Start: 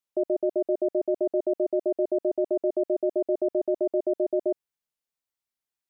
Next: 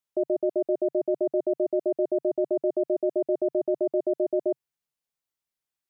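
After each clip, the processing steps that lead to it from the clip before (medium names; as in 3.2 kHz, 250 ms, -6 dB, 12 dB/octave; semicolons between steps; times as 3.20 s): peaking EQ 140 Hz +6 dB 0.48 oct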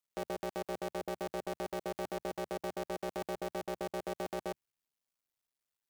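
cycle switcher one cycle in 2, muted; peak limiter -29 dBFS, peak gain reduction 12 dB; trim +1 dB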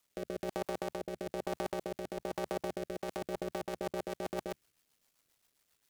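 compressor with a negative ratio -45 dBFS, ratio -1; rotary cabinet horn 1.1 Hz, later 7.5 Hz, at 2.81 s; trim +10 dB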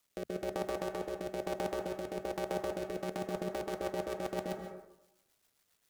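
plate-style reverb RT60 0.87 s, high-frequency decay 0.35×, pre-delay 120 ms, DRR 4.5 dB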